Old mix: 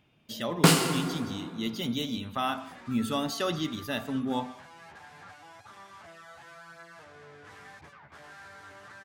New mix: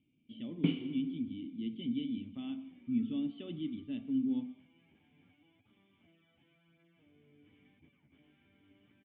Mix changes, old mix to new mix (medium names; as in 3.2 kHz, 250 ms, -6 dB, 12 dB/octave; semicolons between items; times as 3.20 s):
first sound: send -10.5 dB; master: add cascade formant filter i